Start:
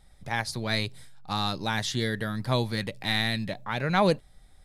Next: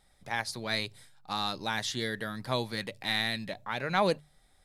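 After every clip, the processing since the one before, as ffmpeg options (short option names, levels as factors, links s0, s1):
-af "lowshelf=f=190:g=-10,bandreject=f=50:t=h:w=6,bandreject=f=100:t=h:w=6,bandreject=f=150:t=h:w=6,volume=0.75"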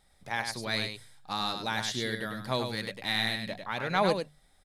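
-af "aecho=1:1:100:0.473"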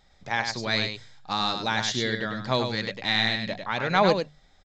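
-af "aresample=16000,aresample=44100,volume=1.88"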